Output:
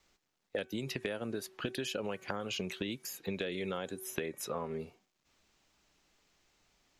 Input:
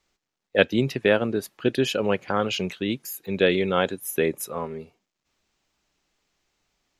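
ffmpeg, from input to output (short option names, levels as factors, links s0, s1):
-filter_complex "[0:a]acrossover=split=690|6300[s0][s1][s2];[s0]acompressor=threshold=0.0355:ratio=4[s3];[s1]acompressor=threshold=0.0224:ratio=4[s4];[s2]acompressor=threshold=0.00251:ratio=4[s5];[s3][s4][s5]amix=inputs=3:normalize=0,bandreject=f=378:t=h:w=4,bandreject=f=756:t=h:w=4,bandreject=f=1134:t=h:w=4,bandreject=f=1512:t=h:w=4,bandreject=f=1890:t=h:w=4,bandreject=f=2268:t=h:w=4,acrossover=split=6200[s6][s7];[s6]acompressor=threshold=0.0158:ratio=6[s8];[s8][s7]amix=inputs=2:normalize=0,volume=1.26"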